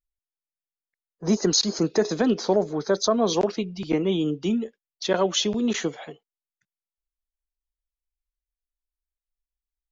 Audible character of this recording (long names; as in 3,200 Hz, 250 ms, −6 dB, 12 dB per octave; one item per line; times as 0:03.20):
background noise floor −94 dBFS
spectral slope −4.0 dB per octave